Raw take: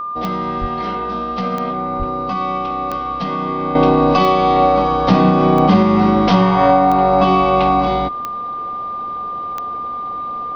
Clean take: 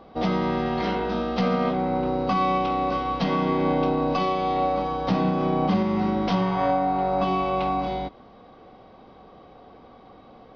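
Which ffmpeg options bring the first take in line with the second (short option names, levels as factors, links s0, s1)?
-filter_complex "[0:a]adeclick=t=4,bandreject=f=1200:w=30,asplit=3[s0][s1][s2];[s0]afade=t=out:st=0.6:d=0.02[s3];[s1]highpass=f=140:w=0.5412,highpass=f=140:w=1.3066,afade=t=in:st=0.6:d=0.02,afade=t=out:st=0.72:d=0.02[s4];[s2]afade=t=in:st=0.72:d=0.02[s5];[s3][s4][s5]amix=inputs=3:normalize=0,asplit=3[s6][s7][s8];[s6]afade=t=out:st=1.98:d=0.02[s9];[s7]highpass=f=140:w=0.5412,highpass=f=140:w=1.3066,afade=t=in:st=1.98:d=0.02,afade=t=out:st=2.1:d=0.02[s10];[s8]afade=t=in:st=2.1:d=0.02[s11];[s9][s10][s11]amix=inputs=3:normalize=0,asetnsamples=n=441:p=0,asendcmd='3.75 volume volume -10.5dB',volume=1"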